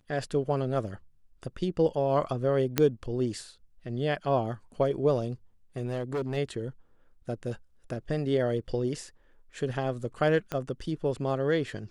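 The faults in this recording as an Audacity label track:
2.780000	2.780000	pop -8 dBFS
5.850000	6.380000	clipped -27 dBFS
10.520000	10.520000	pop -18 dBFS

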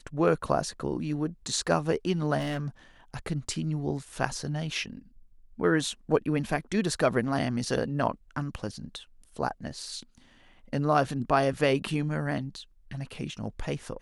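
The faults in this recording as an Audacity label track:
2.380000	2.680000	clipped -26.5 dBFS

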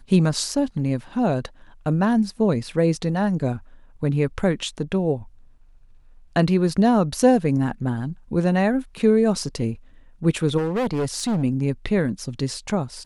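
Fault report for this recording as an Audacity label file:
10.570000	11.440000	clipped -19.5 dBFS

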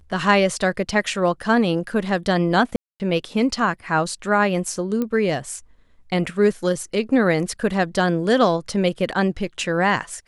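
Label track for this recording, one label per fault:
2.760000	3.000000	gap 0.239 s
5.020000	5.020000	pop -13 dBFS

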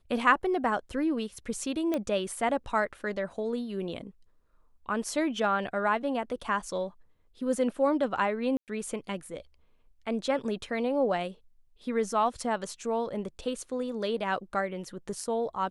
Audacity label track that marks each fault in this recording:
1.940000	1.940000	pop -17 dBFS
8.570000	8.680000	gap 0.108 s

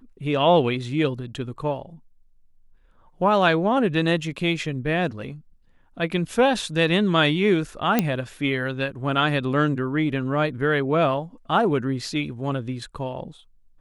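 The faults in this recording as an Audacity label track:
7.990000	7.990000	pop -5 dBFS

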